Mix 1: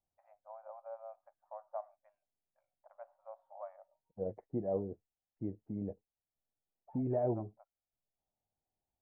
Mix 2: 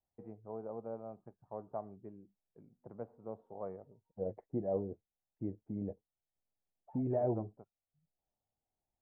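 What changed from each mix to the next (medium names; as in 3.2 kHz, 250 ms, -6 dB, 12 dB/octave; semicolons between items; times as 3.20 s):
first voice: remove brick-wall FIR high-pass 540 Hz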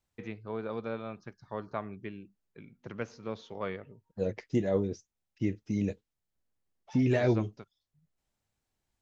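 master: remove four-pole ladder low-pass 860 Hz, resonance 55%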